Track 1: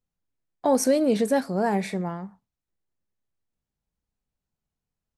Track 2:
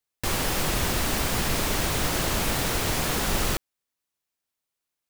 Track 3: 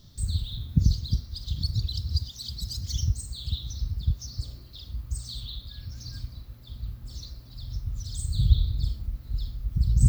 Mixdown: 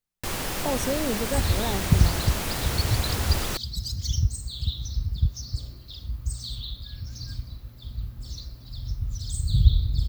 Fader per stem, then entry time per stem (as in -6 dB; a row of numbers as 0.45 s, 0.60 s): -7.5 dB, -4.0 dB, +2.5 dB; 0.00 s, 0.00 s, 1.15 s